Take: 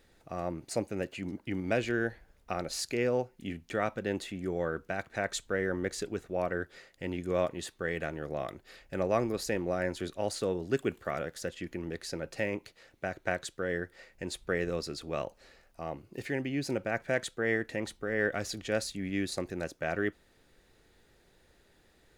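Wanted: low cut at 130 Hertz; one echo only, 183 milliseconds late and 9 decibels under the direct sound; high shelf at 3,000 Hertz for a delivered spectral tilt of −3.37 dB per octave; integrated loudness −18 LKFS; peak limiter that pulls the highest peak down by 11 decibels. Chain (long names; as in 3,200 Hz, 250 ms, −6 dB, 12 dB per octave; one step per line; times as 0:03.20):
high-pass filter 130 Hz
high-shelf EQ 3,000 Hz +6.5 dB
brickwall limiter −23.5 dBFS
single-tap delay 183 ms −9 dB
level +18 dB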